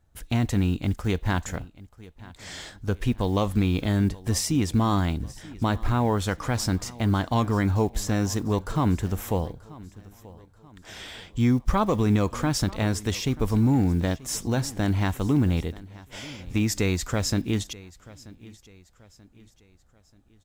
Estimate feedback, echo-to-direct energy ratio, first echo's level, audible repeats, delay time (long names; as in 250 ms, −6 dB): 42%, −19.5 dB, −20.5 dB, 2, 934 ms